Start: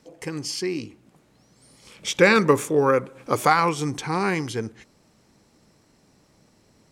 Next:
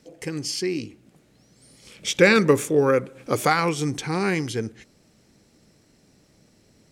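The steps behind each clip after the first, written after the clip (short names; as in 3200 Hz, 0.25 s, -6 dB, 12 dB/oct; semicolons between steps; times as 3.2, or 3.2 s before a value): bell 1000 Hz -8 dB 0.79 oct; gain +1.5 dB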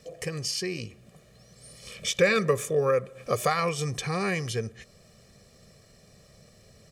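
comb 1.7 ms, depth 81%; compressor 1.5:1, threshold -38 dBFS, peak gain reduction 11 dB; gain +1.5 dB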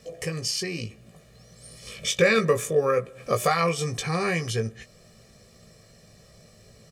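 doubler 18 ms -6 dB; gain +1.5 dB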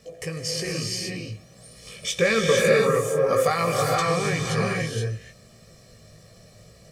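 reverb, pre-delay 60 ms, DRR -1.5 dB; gain -1.5 dB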